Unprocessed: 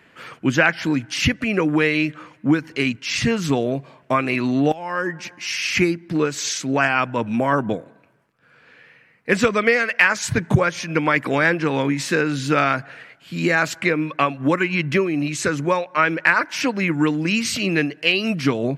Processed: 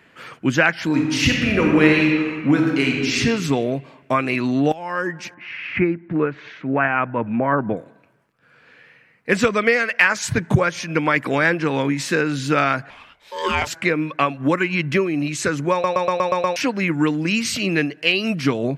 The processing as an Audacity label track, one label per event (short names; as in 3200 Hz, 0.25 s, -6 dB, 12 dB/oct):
0.860000	3.160000	reverb throw, RT60 1.8 s, DRR -0.5 dB
5.340000	7.770000	LPF 2200 Hz 24 dB/oct
12.900000	13.670000	ring modulator 730 Hz
15.720000	15.720000	stutter in place 0.12 s, 7 plays